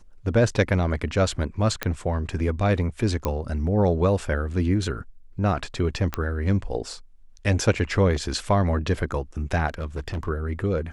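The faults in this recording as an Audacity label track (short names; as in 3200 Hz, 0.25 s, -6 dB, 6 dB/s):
1.830000	1.830000	pop -9 dBFS
3.250000	3.250000	pop -12 dBFS
6.140000	6.140000	pop -11 dBFS
9.670000	10.290000	clipped -25 dBFS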